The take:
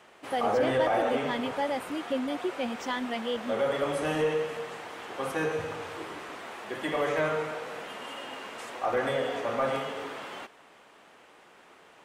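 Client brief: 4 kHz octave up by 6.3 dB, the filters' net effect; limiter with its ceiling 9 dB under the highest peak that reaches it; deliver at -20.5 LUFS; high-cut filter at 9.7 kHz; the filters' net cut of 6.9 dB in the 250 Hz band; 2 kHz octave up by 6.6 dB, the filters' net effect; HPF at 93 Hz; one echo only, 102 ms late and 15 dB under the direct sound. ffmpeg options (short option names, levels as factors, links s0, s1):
-af "highpass=93,lowpass=9700,equalizer=f=250:t=o:g=-8.5,equalizer=f=2000:t=o:g=7,equalizer=f=4000:t=o:g=5.5,alimiter=limit=0.075:level=0:latency=1,aecho=1:1:102:0.178,volume=3.98"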